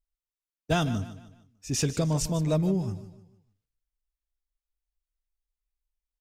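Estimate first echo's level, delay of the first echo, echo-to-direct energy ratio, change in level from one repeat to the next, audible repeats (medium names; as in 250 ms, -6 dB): -14.5 dB, 151 ms, -14.0 dB, -8.0 dB, 3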